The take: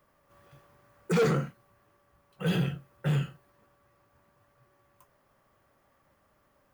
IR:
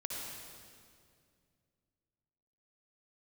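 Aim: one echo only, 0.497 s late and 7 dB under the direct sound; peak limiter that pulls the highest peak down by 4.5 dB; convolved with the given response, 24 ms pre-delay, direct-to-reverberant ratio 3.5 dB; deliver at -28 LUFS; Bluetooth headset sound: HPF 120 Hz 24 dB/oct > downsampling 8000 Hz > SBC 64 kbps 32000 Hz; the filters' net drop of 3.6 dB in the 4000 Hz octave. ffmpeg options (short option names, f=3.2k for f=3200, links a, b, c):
-filter_complex "[0:a]equalizer=f=4k:t=o:g=-5,alimiter=limit=-24dB:level=0:latency=1,aecho=1:1:497:0.447,asplit=2[a][b];[1:a]atrim=start_sample=2205,adelay=24[c];[b][c]afir=irnorm=-1:irlink=0,volume=-4.5dB[d];[a][d]amix=inputs=2:normalize=0,highpass=f=120:w=0.5412,highpass=f=120:w=1.3066,aresample=8000,aresample=44100,volume=5.5dB" -ar 32000 -c:a sbc -b:a 64k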